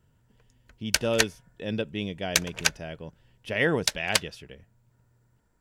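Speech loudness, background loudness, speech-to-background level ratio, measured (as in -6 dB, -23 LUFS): -31.0 LUFS, -27.5 LUFS, -3.5 dB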